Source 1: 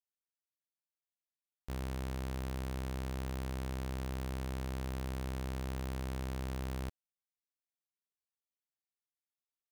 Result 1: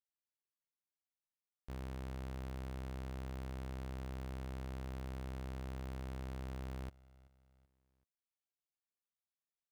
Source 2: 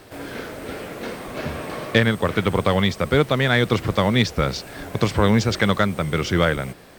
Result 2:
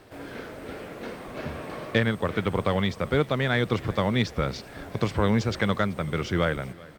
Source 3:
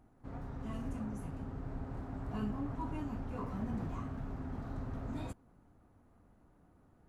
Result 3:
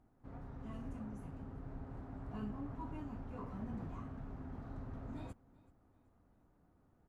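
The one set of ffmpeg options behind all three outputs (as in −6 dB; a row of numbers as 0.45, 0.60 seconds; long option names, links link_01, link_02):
-filter_complex "[0:a]highshelf=frequency=4200:gain=-6.5,asplit=2[link_01][link_02];[link_02]aecho=0:1:382|764|1146:0.075|0.0322|0.0139[link_03];[link_01][link_03]amix=inputs=2:normalize=0,volume=-5.5dB"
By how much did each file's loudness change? −5.5, −6.0, −5.5 LU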